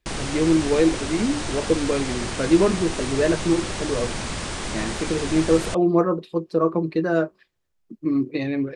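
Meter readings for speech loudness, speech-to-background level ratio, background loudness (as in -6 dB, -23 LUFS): -23.0 LUFS, 6.5 dB, -29.5 LUFS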